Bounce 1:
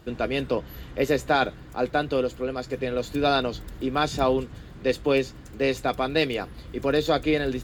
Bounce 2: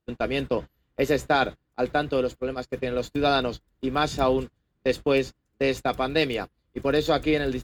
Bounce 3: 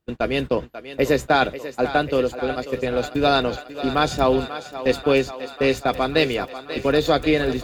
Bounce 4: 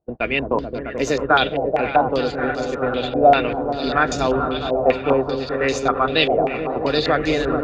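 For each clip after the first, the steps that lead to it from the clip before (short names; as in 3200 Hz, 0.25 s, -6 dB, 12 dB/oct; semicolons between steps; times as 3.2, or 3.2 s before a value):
gate -30 dBFS, range -31 dB
thinning echo 0.54 s, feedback 76%, high-pass 320 Hz, level -12 dB; gain +4 dB
repeats that get brighter 0.217 s, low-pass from 400 Hz, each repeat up 1 oct, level -3 dB; stepped low-pass 5.1 Hz 690–6300 Hz; gain -2.5 dB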